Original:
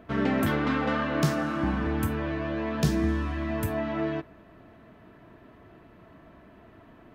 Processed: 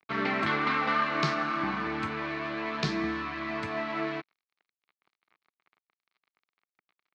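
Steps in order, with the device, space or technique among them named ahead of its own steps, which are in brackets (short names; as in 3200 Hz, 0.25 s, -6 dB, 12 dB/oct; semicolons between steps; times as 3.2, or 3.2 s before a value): blown loudspeaker (crossover distortion -44 dBFS; speaker cabinet 210–5400 Hz, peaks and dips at 260 Hz -9 dB, 530 Hz -9 dB, 1200 Hz +7 dB, 2200 Hz +9 dB, 4200 Hz +7 dB)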